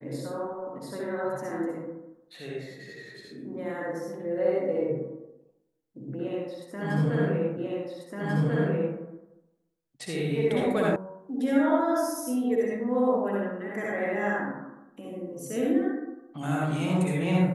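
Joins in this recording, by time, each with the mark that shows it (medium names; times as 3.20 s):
7.57 s: repeat of the last 1.39 s
10.96 s: sound stops dead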